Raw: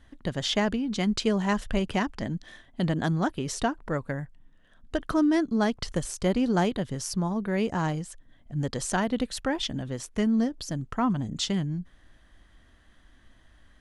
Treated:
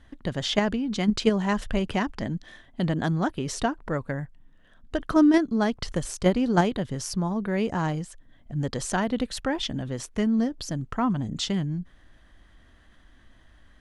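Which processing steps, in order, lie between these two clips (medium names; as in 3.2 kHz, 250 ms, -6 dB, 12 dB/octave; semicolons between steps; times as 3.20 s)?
treble shelf 6.3 kHz -5 dB; in parallel at -1 dB: level held to a coarse grid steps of 22 dB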